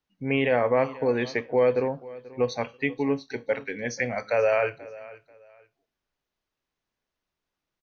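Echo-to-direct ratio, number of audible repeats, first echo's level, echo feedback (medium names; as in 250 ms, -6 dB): -19.0 dB, 2, -19.5 dB, 25%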